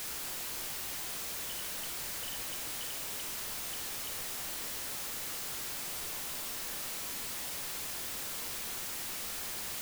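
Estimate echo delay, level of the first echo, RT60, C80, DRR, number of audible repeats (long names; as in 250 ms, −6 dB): no echo audible, no echo audible, 1.6 s, 8.5 dB, 4.5 dB, no echo audible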